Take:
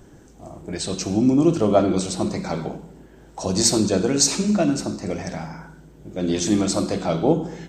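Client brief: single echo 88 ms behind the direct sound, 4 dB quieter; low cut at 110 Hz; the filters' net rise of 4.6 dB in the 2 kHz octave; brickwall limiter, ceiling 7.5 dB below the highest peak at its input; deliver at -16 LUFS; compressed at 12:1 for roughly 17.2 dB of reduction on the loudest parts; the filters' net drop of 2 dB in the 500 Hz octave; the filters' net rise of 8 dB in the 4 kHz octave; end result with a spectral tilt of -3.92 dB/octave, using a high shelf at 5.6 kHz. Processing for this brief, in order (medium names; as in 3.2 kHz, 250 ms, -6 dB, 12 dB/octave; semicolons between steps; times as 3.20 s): high-pass 110 Hz; peaking EQ 500 Hz -3 dB; peaking EQ 2 kHz +3.5 dB; peaking EQ 4 kHz +7 dB; treble shelf 5.6 kHz +5 dB; compression 12:1, threshold -25 dBFS; peak limiter -20 dBFS; delay 88 ms -4 dB; trim +13.5 dB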